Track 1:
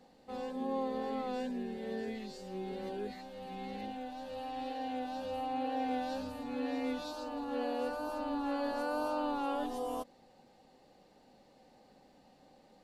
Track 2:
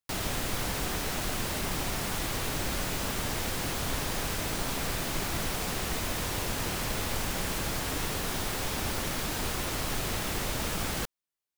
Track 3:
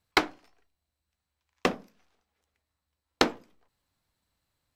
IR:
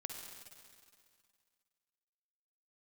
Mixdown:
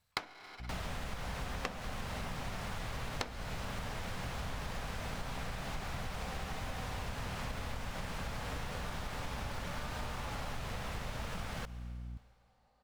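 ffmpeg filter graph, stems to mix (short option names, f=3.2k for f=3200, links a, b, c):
-filter_complex "[0:a]equalizer=f=1.2k:w=1.5:g=10,adelay=900,volume=-15dB,asplit=2[a][b];[b]volume=-5dB[c];[1:a]aemphasis=mode=reproduction:type=75kf,aeval=exprs='val(0)+0.00794*(sin(2*PI*60*n/s)+sin(2*PI*2*60*n/s)/2+sin(2*PI*3*60*n/s)/3+sin(2*PI*4*60*n/s)/4+sin(2*PI*5*60*n/s)/5)':c=same,adelay=600,volume=-1dB,asplit=2[d][e];[e]volume=-11.5dB[f];[2:a]volume=0.5dB,asplit=2[g][h];[h]volume=-10.5dB[i];[3:a]atrim=start_sample=2205[j];[c][f][i]amix=inputs=3:normalize=0[k];[k][j]afir=irnorm=-1:irlink=0[l];[a][d][g][l]amix=inputs=4:normalize=0,equalizer=f=330:t=o:w=0.71:g=-11.5,acompressor=threshold=-36dB:ratio=6"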